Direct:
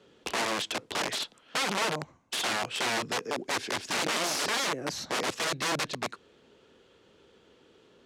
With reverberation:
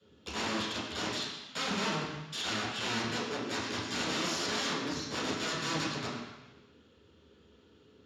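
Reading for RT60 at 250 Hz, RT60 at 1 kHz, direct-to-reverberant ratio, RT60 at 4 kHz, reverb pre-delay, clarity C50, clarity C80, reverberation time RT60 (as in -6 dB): 1.0 s, 1.1 s, -11.5 dB, 1.2 s, 3 ms, 1.0 dB, 3.0 dB, 1.0 s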